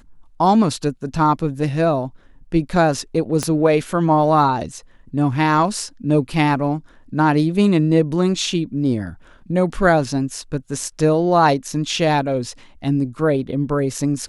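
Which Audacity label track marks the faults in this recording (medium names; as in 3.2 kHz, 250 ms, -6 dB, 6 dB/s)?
3.430000	3.430000	pop -8 dBFS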